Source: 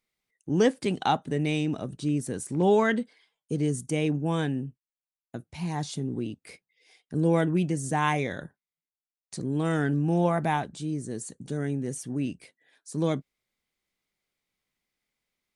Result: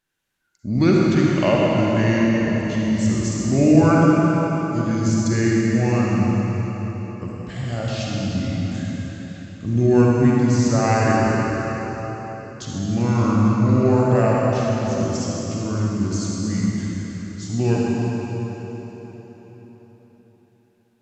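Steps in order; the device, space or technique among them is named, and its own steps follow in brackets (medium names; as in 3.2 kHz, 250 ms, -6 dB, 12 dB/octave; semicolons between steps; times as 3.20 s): slowed and reverbed (tape speed -26%; reverberation RT60 4.5 s, pre-delay 42 ms, DRR -4.5 dB); trim +3 dB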